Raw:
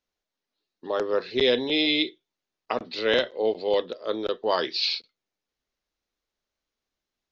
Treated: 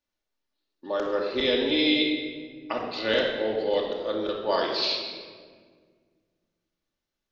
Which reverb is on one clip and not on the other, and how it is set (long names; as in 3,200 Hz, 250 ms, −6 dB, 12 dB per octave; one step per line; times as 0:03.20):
rectangular room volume 2,300 cubic metres, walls mixed, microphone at 2.5 metres
level −4 dB